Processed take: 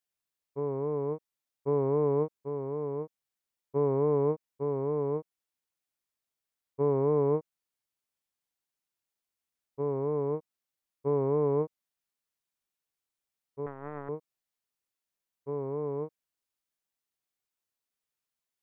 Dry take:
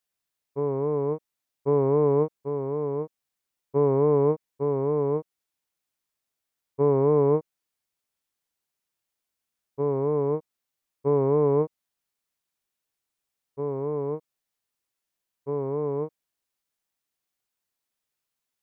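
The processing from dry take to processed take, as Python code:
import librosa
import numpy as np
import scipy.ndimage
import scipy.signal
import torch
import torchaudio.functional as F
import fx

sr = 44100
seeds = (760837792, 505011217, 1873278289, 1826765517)

y = fx.power_curve(x, sr, exponent=3.0, at=(13.66, 14.09))
y = y * librosa.db_to_amplitude(-5.5)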